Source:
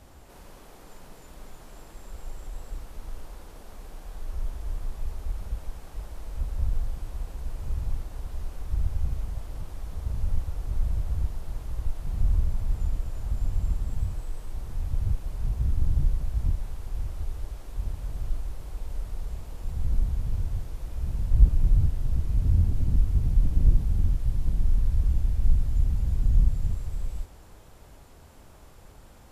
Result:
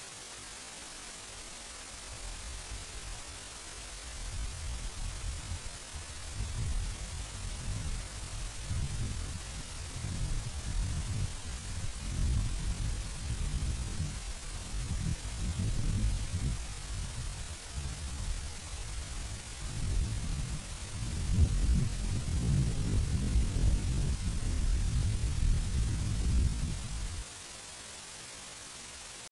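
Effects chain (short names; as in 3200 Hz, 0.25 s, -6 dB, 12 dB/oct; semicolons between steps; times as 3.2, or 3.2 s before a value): one diode to ground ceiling -12 dBFS; low shelf 83 Hz -4 dB; requantised 6-bit, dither triangular; pitch shift +8.5 st; downsampling 22050 Hz; gain -4.5 dB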